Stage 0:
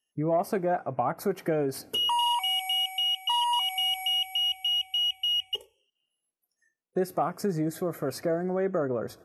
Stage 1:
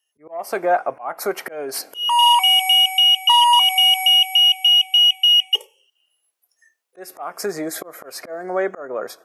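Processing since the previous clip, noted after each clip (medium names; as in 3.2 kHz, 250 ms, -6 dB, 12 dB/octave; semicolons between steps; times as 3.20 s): high-pass 620 Hz 12 dB/octave; slow attack 302 ms; level rider gain up to 6.5 dB; trim +7 dB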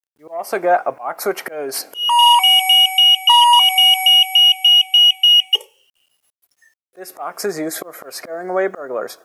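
bit crusher 11-bit; trim +3 dB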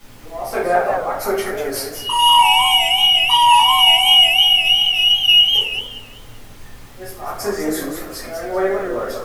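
added noise pink -44 dBFS; simulated room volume 59 m³, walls mixed, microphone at 2 m; modulated delay 192 ms, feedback 31%, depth 185 cents, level -6.5 dB; trim -9.5 dB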